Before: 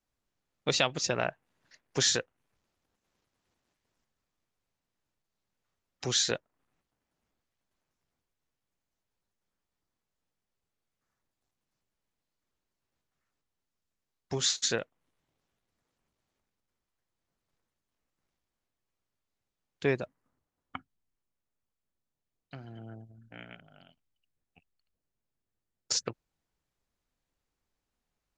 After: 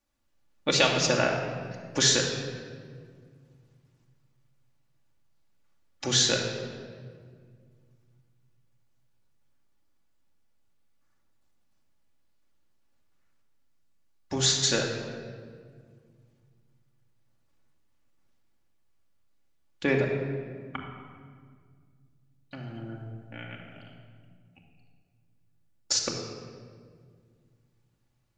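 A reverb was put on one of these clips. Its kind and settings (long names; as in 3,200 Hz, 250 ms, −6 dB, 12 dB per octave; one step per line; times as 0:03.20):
rectangular room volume 3,100 cubic metres, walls mixed, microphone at 2.4 metres
level +2.5 dB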